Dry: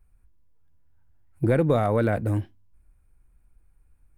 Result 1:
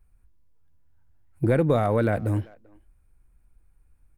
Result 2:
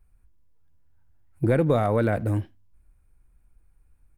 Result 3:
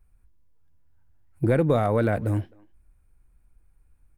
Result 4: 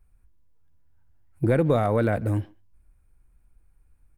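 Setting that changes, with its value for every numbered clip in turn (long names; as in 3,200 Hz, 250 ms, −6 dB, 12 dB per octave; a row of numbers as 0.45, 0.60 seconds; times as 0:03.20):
far-end echo of a speakerphone, delay time: 390, 80, 260, 140 milliseconds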